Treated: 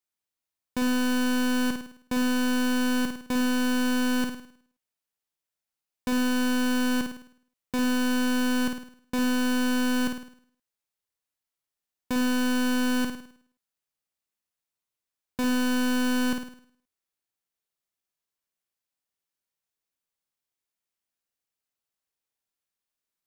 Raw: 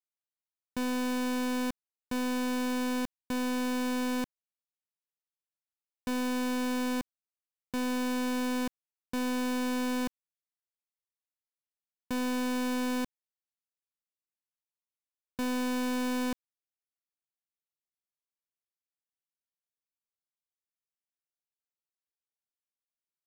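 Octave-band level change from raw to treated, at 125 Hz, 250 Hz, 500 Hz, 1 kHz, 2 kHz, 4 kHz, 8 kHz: can't be measured, +6.5 dB, +2.5 dB, +3.0 dB, +8.5 dB, +8.0 dB, +6.5 dB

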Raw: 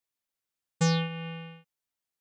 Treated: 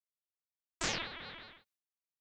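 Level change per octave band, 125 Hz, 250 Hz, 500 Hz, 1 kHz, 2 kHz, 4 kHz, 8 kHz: −23.0, −18.0, −11.5, −7.0, −3.0, −3.0, −2.5 decibels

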